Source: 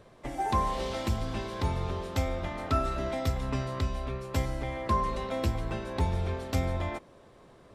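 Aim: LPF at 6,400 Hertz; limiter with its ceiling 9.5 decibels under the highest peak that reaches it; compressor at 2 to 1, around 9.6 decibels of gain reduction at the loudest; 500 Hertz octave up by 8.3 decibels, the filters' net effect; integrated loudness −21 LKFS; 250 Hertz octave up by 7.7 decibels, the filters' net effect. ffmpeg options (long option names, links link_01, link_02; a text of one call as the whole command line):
ffmpeg -i in.wav -af "lowpass=6400,equalizer=frequency=250:width_type=o:gain=7,equalizer=frequency=500:width_type=o:gain=8.5,acompressor=threshold=-37dB:ratio=2,volume=18dB,alimiter=limit=-12.5dB:level=0:latency=1" out.wav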